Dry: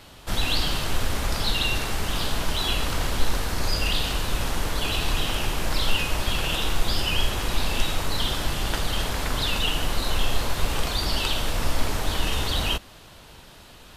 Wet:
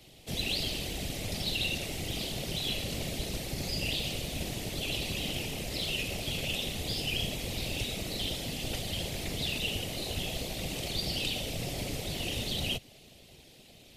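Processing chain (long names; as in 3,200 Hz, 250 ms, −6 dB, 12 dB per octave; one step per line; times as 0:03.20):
high-pass filter 50 Hz 12 dB per octave
flat-topped bell 1,200 Hz −16 dB 1.2 octaves
random phases in short frames
level −6 dB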